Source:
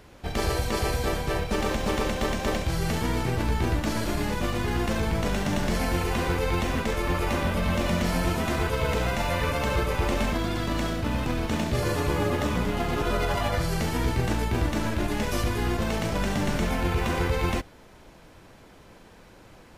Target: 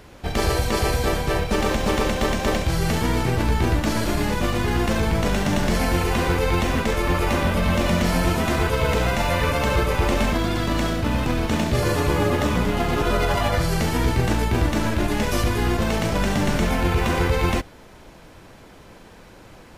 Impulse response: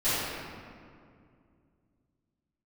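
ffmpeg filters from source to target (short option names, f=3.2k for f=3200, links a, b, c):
-af "acontrast=28"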